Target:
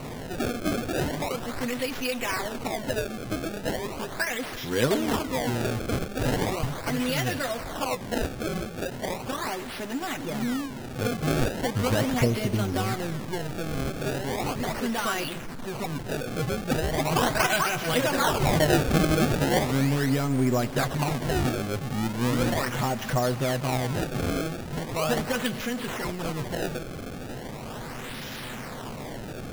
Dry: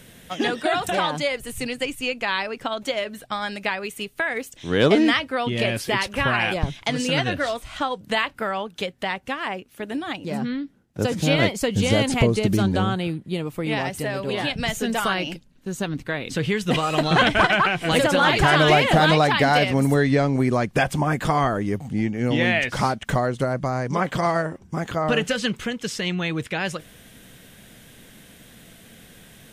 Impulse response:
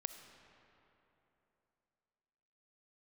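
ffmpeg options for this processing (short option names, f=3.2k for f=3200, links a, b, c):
-filter_complex "[0:a]aeval=exprs='val(0)+0.5*0.0596*sgn(val(0))':c=same,asplit=2[a][b];[1:a]atrim=start_sample=2205,adelay=8[c];[b][c]afir=irnorm=-1:irlink=0,volume=-1.5dB[d];[a][d]amix=inputs=2:normalize=0,acrusher=samples=26:mix=1:aa=0.000001:lfo=1:lforange=41.6:lforate=0.38,volume=-8.5dB"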